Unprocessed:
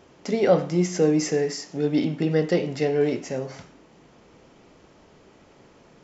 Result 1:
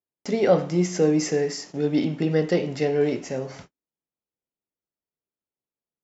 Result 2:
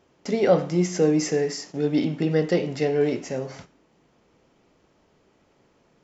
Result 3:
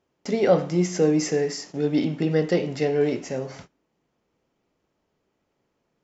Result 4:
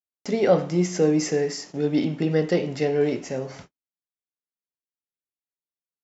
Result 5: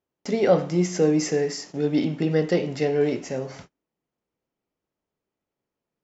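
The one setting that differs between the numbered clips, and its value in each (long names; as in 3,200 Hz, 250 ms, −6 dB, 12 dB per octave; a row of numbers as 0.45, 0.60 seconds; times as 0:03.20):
noise gate, range: −46, −9, −21, −59, −33 decibels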